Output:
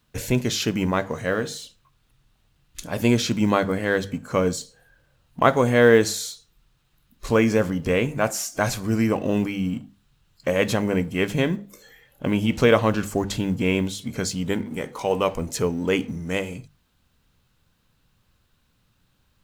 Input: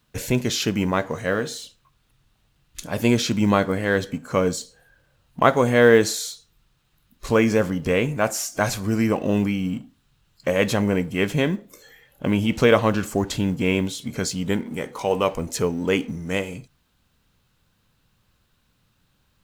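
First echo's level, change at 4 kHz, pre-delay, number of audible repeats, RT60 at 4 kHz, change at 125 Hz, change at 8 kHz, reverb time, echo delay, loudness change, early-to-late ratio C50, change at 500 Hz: no echo, -1.0 dB, no reverb, no echo, no reverb, -0.5 dB, -1.0 dB, no reverb, no echo, -1.0 dB, no reverb, -1.0 dB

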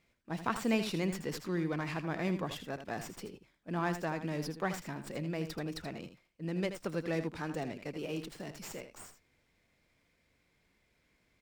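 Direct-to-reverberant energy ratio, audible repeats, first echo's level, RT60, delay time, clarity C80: no reverb, 1, -10.0 dB, no reverb, 80 ms, no reverb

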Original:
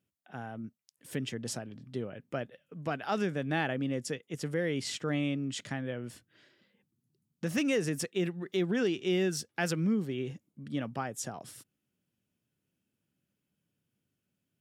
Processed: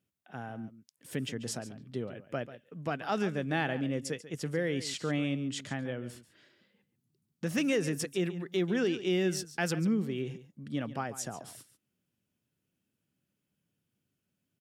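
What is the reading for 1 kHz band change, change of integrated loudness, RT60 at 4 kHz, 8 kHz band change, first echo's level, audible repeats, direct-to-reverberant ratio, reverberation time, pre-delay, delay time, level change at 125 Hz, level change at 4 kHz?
0.0 dB, 0.0 dB, no reverb, 0.0 dB, -14.5 dB, 1, no reverb, no reverb, no reverb, 140 ms, 0.0 dB, 0.0 dB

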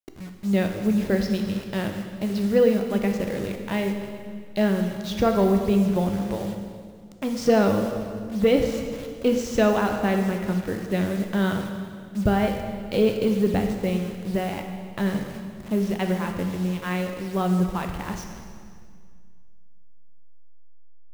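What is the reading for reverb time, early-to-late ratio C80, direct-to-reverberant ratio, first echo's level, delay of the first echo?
2.0 s, 7.0 dB, 4.0 dB, no echo, no echo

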